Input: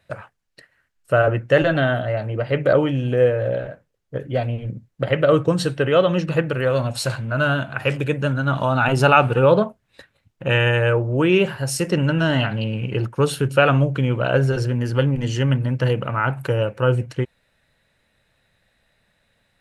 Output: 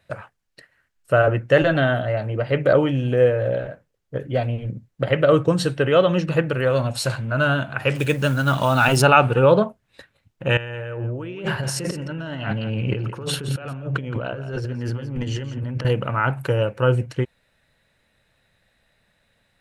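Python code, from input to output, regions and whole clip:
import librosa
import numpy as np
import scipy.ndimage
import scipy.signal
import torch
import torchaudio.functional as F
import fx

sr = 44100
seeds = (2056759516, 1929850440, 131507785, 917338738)

y = fx.chain(x, sr, fx.law_mismatch(coded='mu'),
    fx.high_shelf(hz=3300.0, db=11.0), at=(7.95, 9.02))
y = fx.chain(y, sr, fx.over_compress(threshold_db=-28.0, ratio=-1.0),
    fx.high_shelf(hz=6500.0, db=-9.0),
    fx.echo_single(ms=170, db=-12.5), at=(10.57, 15.85))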